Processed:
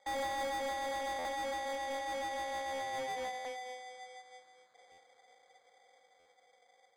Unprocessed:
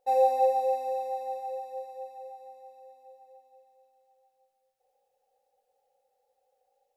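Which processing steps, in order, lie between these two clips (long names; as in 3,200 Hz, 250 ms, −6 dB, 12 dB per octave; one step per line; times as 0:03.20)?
source passing by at 0:03.06, 13 m/s, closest 4.2 metres
high-pass filter 470 Hz 24 dB per octave
in parallel at −1 dB: downward compressor, threshold −53 dBFS, peak gain reduction 14.5 dB
on the sum: decimation without filtering 16×
Chebyshev low-pass filter 9,000 Hz, order 6
mid-hump overdrive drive 32 dB, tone 6,500 Hz, clips at −31 dBFS
buffer that repeats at 0:01.18/0:03.38/0:04.91/0:06.19, samples 512, times 5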